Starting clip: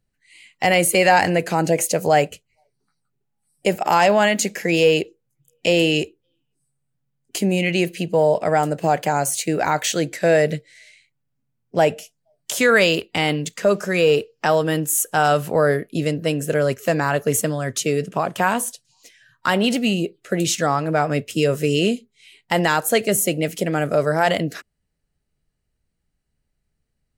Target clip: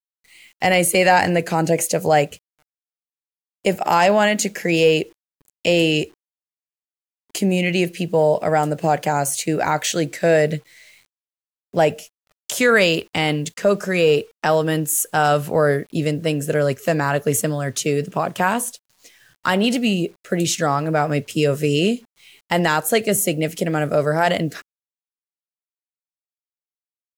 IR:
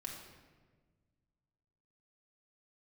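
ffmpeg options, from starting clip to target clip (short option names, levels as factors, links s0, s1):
-af "lowshelf=f=160:g=3,acrusher=bits=8:mix=0:aa=0.000001"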